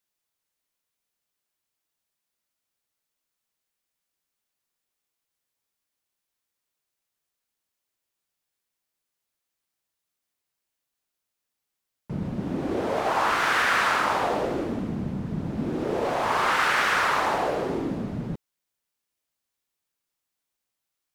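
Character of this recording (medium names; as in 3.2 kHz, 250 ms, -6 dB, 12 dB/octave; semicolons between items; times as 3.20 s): noise floor -84 dBFS; spectral tilt -4.5 dB/octave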